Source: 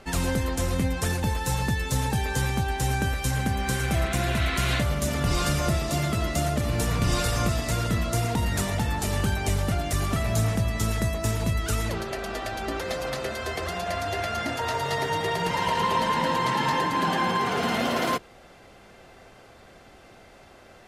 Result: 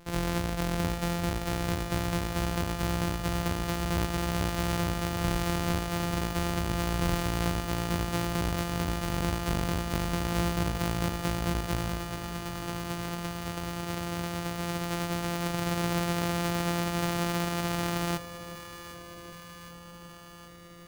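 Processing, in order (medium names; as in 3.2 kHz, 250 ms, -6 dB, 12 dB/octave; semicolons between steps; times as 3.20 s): sorted samples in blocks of 256 samples; echo whose repeats swap between lows and highs 384 ms, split 830 Hz, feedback 83%, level -11 dB; trim -4.5 dB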